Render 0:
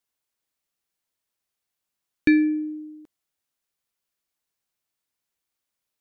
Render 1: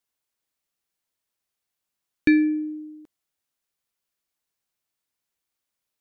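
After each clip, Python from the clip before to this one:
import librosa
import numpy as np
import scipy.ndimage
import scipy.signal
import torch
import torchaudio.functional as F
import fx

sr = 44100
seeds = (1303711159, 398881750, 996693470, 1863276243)

y = x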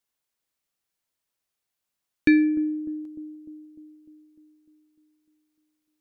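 y = fx.echo_bbd(x, sr, ms=300, stages=2048, feedback_pct=60, wet_db=-15.5)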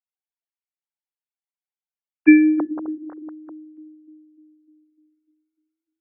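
y = fx.sine_speech(x, sr)
y = y * 10.0 ** (6.0 / 20.0)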